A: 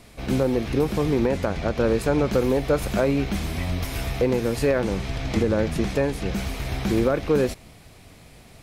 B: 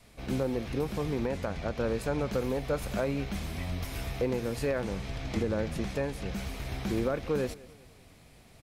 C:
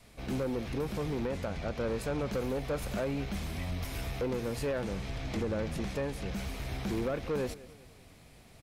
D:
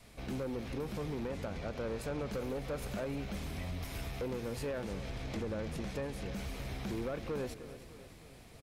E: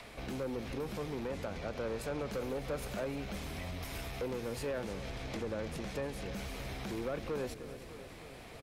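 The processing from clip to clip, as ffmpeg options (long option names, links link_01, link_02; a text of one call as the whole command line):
ffmpeg -i in.wav -af "adynamicequalizer=threshold=0.0158:dfrequency=340:dqfactor=2.2:tfrequency=340:tqfactor=2.2:attack=5:release=100:ratio=0.375:range=2.5:mode=cutabove:tftype=bell,aecho=1:1:195|390|585:0.0891|0.0401|0.018,volume=-8dB" out.wav
ffmpeg -i in.wav -af "asoftclip=type=tanh:threshold=-26.5dB" out.wav
ffmpeg -i in.wav -af "acompressor=threshold=-44dB:ratio=1.5,aecho=1:1:305|610|915|1220|1525|1830:0.2|0.112|0.0626|0.035|0.0196|0.011" out.wav
ffmpeg -i in.wav -filter_complex "[0:a]acrossover=split=320|3700[link_01][link_02][link_03];[link_01]alimiter=level_in=14.5dB:limit=-24dB:level=0:latency=1:release=190,volume=-14.5dB[link_04];[link_02]acompressor=mode=upward:threshold=-45dB:ratio=2.5[link_05];[link_04][link_05][link_03]amix=inputs=3:normalize=0,volume=1.5dB" out.wav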